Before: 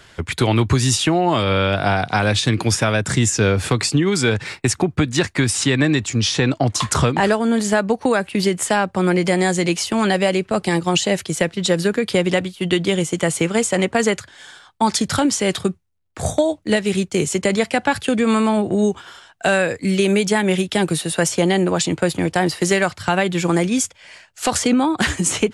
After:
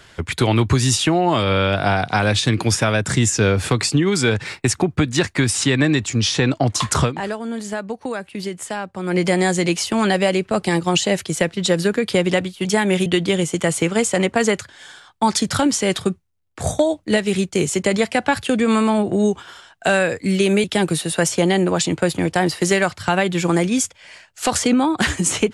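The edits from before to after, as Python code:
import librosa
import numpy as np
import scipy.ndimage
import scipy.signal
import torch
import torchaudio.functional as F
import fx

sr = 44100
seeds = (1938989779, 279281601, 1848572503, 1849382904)

y = fx.edit(x, sr, fx.fade_down_up(start_s=7.03, length_s=2.14, db=-9.0, fade_s=0.15, curve='qua'),
    fx.move(start_s=20.23, length_s=0.41, to_s=12.65), tone=tone)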